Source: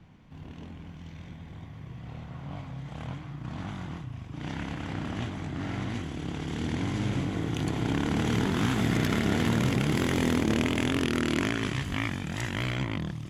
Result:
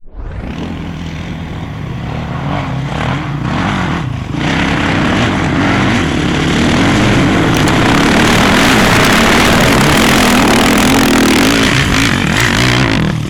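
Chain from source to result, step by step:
turntable start at the beginning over 0.58 s
parametric band 98 Hz −6 dB 1.6 octaves
sine wavefolder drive 15 dB, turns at −12.5 dBFS
dynamic equaliser 1,600 Hz, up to +4 dB, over −32 dBFS, Q 0.78
level +6.5 dB

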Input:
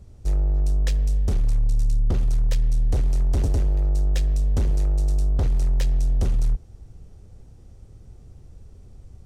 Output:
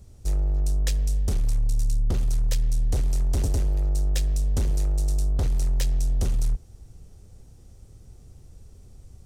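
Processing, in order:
high-shelf EQ 4,700 Hz +11.5 dB
level −2.5 dB

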